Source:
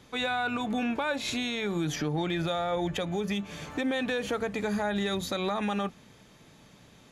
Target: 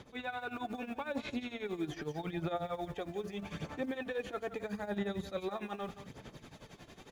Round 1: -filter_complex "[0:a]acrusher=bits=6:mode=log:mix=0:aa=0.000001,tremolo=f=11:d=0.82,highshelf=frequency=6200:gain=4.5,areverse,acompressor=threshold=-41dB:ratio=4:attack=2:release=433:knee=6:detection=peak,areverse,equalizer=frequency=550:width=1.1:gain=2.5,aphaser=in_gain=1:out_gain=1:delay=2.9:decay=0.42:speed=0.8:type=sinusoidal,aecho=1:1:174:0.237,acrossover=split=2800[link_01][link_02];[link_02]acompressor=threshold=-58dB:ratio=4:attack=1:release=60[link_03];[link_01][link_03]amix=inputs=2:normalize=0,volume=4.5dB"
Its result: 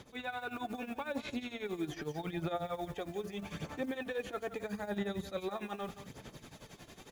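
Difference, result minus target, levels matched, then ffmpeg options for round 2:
8,000 Hz band +4.0 dB
-filter_complex "[0:a]acrusher=bits=6:mode=log:mix=0:aa=0.000001,tremolo=f=11:d=0.82,highshelf=frequency=6200:gain=-6,areverse,acompressor=threshold=-41dB:ratio=4:attack=2:release=433:knee=6:detection=peak,areverse,equalizer=frequency=550:width=1.1:gain=2.5,aphaser=in_gain=1:out_gain=1:delay=2.9:decay=0.42:speed=0.8:type=sinusoidal,aecho=1:1:174:0.237,acrossover=split=2800[link_01][link_02];[link_02]acompressor=threshold=-58dB:ratio=4:attack=1:release=60[link_03];[link_01][link_03]amix=inputs=2:normalize=0,volume=4.5dB"

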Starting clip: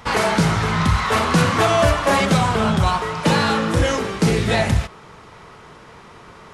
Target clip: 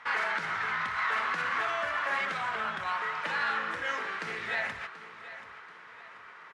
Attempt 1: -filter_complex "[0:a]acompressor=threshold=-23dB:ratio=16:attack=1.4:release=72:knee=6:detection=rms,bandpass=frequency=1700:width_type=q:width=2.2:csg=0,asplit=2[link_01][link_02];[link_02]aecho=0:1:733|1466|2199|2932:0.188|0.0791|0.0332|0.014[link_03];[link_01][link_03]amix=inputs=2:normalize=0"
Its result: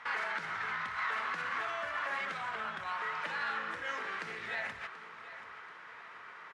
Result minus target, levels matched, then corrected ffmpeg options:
downward compressor: peak gain reduction +6 dB
-filter_complex "[0:a]acompressor=threshold=-16.5dB:ratio=16:attack=1.4:release=72:knee=6:detection=rms,bandpass=frequency=1700:width_type=q:width=2.2:csg=0,asplit=2[link_01][link_02];[link_02]aecho=0:1:733|1466|2199|2932:0.188|0.0791|0.0332|0.014[link_03];[link_01][link_03]amix=inputs=2:normalize=0"

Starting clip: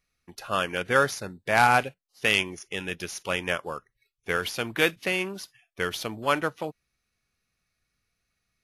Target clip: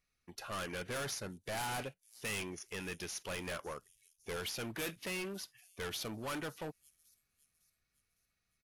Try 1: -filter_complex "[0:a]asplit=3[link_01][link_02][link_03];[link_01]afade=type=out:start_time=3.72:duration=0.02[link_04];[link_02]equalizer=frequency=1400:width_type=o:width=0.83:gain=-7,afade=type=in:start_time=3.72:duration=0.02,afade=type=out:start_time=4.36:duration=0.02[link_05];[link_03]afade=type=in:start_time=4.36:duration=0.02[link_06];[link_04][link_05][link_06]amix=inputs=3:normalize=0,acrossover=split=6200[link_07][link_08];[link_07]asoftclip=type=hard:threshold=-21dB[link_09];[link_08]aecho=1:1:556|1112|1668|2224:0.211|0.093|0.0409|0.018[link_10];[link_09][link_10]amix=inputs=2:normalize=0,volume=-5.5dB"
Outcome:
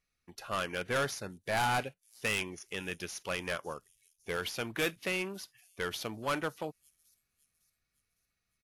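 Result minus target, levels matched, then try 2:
hard clipping: distortion −6 dB
-filter_complex "[0:a]asplit=3[link_01][link_02][link_03];[link_01]afade=type=out:start_time=3.72:duration=0.02[link_04];[link_02]equalizer=frequency=1400:width_type=o:width=0.83:gain=-7,afade=type=in:start_time=3.72:duration=0.02,afade=type=out:start_time=4.36:duration=0.02[link_05];[link_03]afade=type=in:start_time=4.36:duration=0.02[link_06];[link_04][link_05][link_06]amix=inputs=3:normalize=0,acrossover=split=6200[link_07][link_08];[link_07]asoftclip=type=hard:threshold=-32dB[link_09];[link_08]aecho=1:1:556|1112|1668|2224:0.211|0.093|0.0409|0.018[link_10];[link_09][link_10]amix=inputs=2:normalize=0,volume=-5.5dB"

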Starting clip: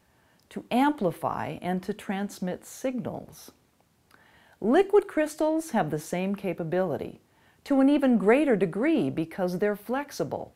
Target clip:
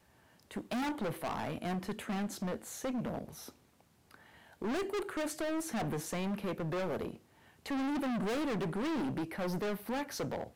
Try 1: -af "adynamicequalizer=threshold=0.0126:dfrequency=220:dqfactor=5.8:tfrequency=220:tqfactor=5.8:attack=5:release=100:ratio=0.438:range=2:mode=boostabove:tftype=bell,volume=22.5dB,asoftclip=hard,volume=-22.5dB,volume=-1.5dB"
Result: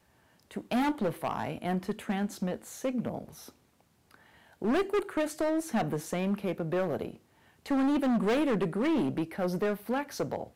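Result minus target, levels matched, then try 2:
gain into a clipping stage and back: distortion −5 dB
-af "adynamicequalizer=threshold=0.0126:dfrequency=220:dqfactor=5.8:tfrequency=220:tqfactor=5.8:attack=5:release=100:ratio=0.438:range=2:mode=boostabove:tftype=bell,volume=31dB,asoftclip=hard,volume=-31dB,volume=-1.5dB"

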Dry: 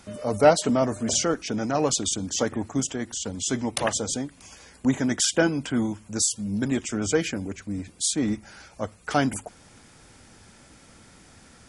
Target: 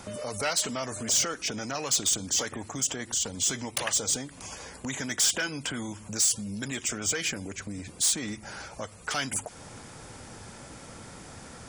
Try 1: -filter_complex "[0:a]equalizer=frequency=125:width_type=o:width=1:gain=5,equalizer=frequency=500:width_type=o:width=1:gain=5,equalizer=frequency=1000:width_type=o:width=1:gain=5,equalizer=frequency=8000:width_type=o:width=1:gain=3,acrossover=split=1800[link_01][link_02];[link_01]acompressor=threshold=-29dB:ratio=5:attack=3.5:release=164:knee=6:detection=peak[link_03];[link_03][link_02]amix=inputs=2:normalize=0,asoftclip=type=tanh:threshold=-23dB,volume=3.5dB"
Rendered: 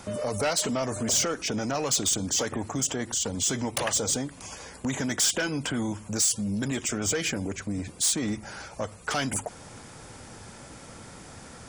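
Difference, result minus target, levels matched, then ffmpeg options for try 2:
downward compressor: peak gain reduction −7 dB
-filter_complex "[0:a]equalizer=frequency=125:width_type=o:width=1:gain=5,equalizer=frequency=500:width_type=o:width=1:gain=5,equalizer=frequency=1000:width_type=o:width=1:gain=5,equalizer=frequency=8000:width_type=o:width=1:gain=3,acrossover=split=1800[link_01][link_02];[link_01]acompressor=threshold=-38dB:ratio=5:attack=3.5:release=164:knee=6:detection=peak[link_03];[link_03][link_02]amix=inputs=2:normalize=0,asoftclip=type=tanh:threshold=-23dB,volume=3.5dB"

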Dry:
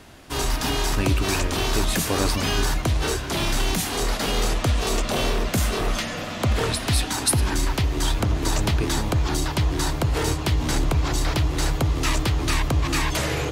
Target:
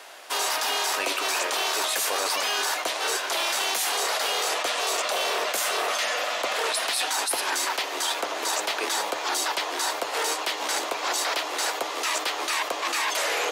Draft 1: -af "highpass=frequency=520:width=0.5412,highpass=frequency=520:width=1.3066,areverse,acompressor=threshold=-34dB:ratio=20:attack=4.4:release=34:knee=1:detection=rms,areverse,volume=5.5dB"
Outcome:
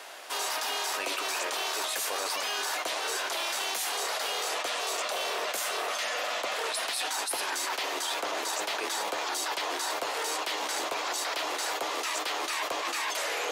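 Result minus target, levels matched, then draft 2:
downward compressor: peak gain reduction +5.5 dB
-af "highpass=frequency=520:width=0.5412,highpass=frequency=520:width=1.3066,areverse,acompressor=threshold=-28dB:ratio=20:attack=4.4:release=34:knee=1:detection=rms,areverse,volume=5.5dB"

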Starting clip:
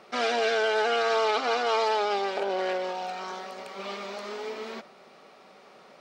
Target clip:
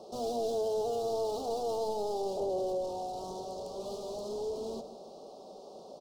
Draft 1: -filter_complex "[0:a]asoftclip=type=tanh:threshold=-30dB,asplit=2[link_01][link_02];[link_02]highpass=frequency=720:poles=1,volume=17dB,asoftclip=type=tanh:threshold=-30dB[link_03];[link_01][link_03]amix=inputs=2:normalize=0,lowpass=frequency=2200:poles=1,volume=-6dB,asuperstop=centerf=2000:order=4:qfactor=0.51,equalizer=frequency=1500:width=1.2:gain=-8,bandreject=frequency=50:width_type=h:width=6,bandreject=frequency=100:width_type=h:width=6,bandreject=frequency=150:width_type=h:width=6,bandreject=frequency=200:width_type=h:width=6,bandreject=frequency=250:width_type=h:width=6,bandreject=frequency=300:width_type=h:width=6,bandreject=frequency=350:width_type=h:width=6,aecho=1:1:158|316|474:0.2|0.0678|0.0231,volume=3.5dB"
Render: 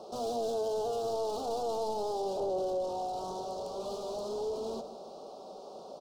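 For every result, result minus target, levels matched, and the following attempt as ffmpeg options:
2,000 Hz band +5.5 dB; soft clipping: distortion +8 dB
-filter_complex "[0:a]asoftclip=type=tanh:threshold=-30dB,asplit=2[link_01][link_02];[link_02]highpass=frequency=720:poles=1,volume=17dB,asoftclip=type=tanh:threshold=-30dB[link_03];[link_01][link_03]amix=inputs=2:normalize=0,lowpass=frequency=2200:poles=1,volume=-6dB,asuperstop=centerf=2000:order=4:qfactor=0.51,equalizer=frequency=1500:width=1.2:gain=-19,bandreject=frequency=50:width_type=h:width=6,bandreject=frequency=100:width_type=h:width=6,bandreject=frequency=150:width_type=h:width=6,bandreject=frequency=200:width_type=h:width=6,bandreject=frequency=250:width_type=h:width=6,bandreject=frequency=300:width_type=h:width=6,bandreject=frequency=350:width_type=h:width=6,aecho=1:1:158|316|474:0.2|0.0678|0.0231,volume=3.5dB"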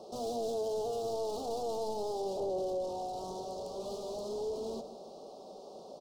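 soft clipping: distortion +8 dB
-filter_complex "[0:a]asoftclip=type=tanh:threshold=-21.5dB,asplit=2[link_01][link_02];[link_02]highpass=frequency=720:poles=1,volume=17dB,asoftclip=type=tanh:threshold=-30dB[link_03];[link_01][link_03]amix=inputs=2:normalize=0,lowpass=frequency=2200:poles=1,volume=-6dB,asuperstop=centerf=2000:order=4:qfactor=0.51,equalizer=frequency=1500:width=1.2:gain=-19,bandreject=frequency=50:width_type=h:width=6,bandreject=frequency=100:width_type=h:width=6,bandreject=frequency=150:width_type=h:width=6,bandreject=frequency=200:width_type=h:width=6,bandreject=frequency=250:width_type=h:width=6,bandreject=frequency=300:width_type=h:width=6,bandreject=frequency=350:width_type=h:width=6,aecho=1:1:158|316|474:0.2|0.0678|0.0231,volume=3.5dB"

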